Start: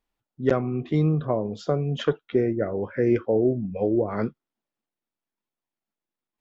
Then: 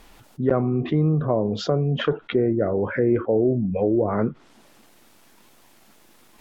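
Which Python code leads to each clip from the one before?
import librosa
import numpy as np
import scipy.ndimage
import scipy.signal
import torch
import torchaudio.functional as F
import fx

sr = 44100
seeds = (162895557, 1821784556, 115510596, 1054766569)

y = fx.env_lowpass_down(x, sr, base_hz=1400.0, full_db=-22.5)
y = fx.env_flatten(y, sr, amount_pct=50)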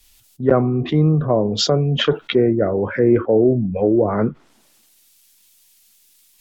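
y = fx.high_shelf(x, sr, hz=5400.0, db=9.0)
y = fx.band_widen(y, sr, depth_pct=70)
y = y * 10.0 ** (4.5 / 20.0)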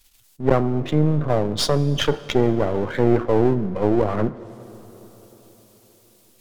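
y = np.where(x < 0.0, 10.0 ** (-12.0 / 20.0) * x, x)
y = fx.rev_plate(y, sr, seeds[0], rt60_s=4.7, hf_ratio=0.6, predelay_ms=0, drr_db=16.5)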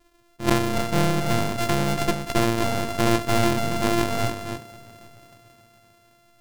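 y = np.r_[np.sort(x[:len(x) // 128 * 128].reshape(-1, 128), axis=1).ravel(), x[len(x) // 128 * 128:]]
y = y + 10.0 ** (-6.5 / 20.0) * np.pad(y, (int(283 * sr / 1000.0), 0))[:len(y)]
y = fx.doppler_dist(y, sr, depth_ms=0.13)
y = y * 10.0 ** (-3.0 / 20.0)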